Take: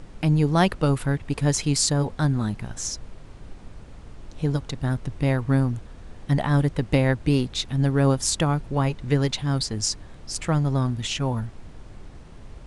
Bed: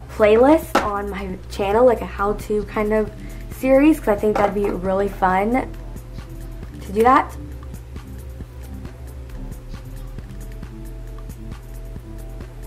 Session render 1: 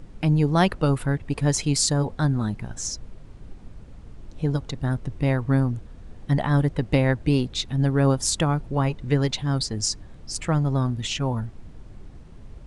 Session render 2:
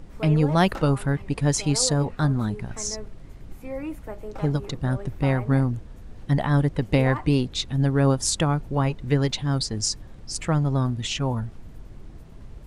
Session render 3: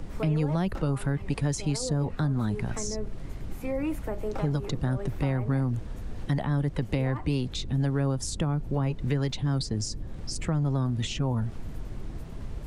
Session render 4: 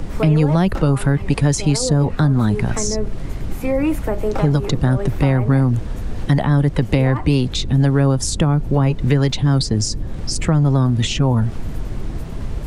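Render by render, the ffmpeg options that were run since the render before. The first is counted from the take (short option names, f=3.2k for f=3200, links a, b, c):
-af "afftdn=nr=6:nf=-44"
-filter_complex "[1:a]volume=-19.5dB[a];[0:a][a]amix=inputs=2:normalize=0"
-filter_complex "[0:a]acrossover=split=160|520[a][b][c];[a]acompressor=threshold=-33dB:ratio=4[d];[b]acompressor=threshold=-34dB:ratio=4[e];[c]acompressor=threshold=-41dB:ratio=4[f];[d][e][f]amix=inputs=3:normalize=0,asplit=2[g][h];[h]alimiter=level_in=4.5dB:limit=-24dB:level=0:latency=1:release=21,volume=-4.5dB,volume=-1dB[i];[g][i]amix=inputs=2:normalize=0"
-af "volume=11.5dB"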